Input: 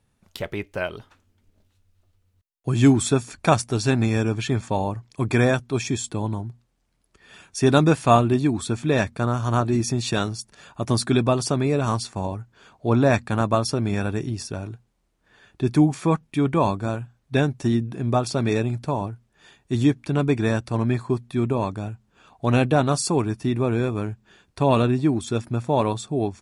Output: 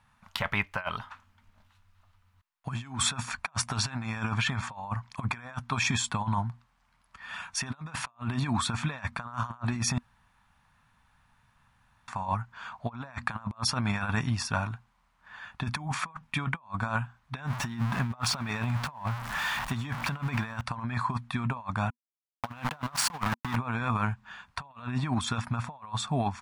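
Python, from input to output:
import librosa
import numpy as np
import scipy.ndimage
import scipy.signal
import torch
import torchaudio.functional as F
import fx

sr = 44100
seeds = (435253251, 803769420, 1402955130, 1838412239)

y = fx.zero_step(x, sr, step_db=-33.5, at=(17.47, 20.61))
y = fx.sample_gate(y, sr, floor_db=-25.5, at=(21.9, 23.56))
y = fx.edit(y, sr, fx.room_tone_fill(start_s=9.98, length_s=2.1), tone=tone)
y = fx.curve_eq(y, sr, hz=(240.0, 350.0, 990.0, 7800.0), db=(0, -18, 15, -2))
y = fx.over_compress(y, sr, threshold_db=-25.0, ratio=-0.5)
y = y * librosa.db_to_amplitude(-6.5)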